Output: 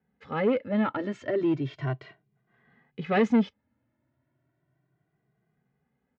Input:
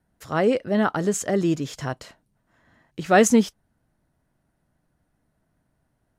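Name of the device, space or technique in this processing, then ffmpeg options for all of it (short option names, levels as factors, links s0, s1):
barber-pole flanger into a guitar amplifier: -filter_complex "[0:a]asplit=2[s0][s1];[s1]adelay=2,afreqshift=0.34[s2];[s0][s2]amix=inputs=2:normalize=1,asoftclip=type=tanh:threshold=0.126,highpass=94,equalizer=f=130:t=q:w=4:g=7,equalizer=f=240:t=q:w=4:g=4,equalizer=f=400:t=q:w=4:g=6,equalizer=f=2100:t=q:w=4:g=6,lowpass=f=3500:w=0.5412,lowpass=f=3500:w=1.3066,volume=0.75"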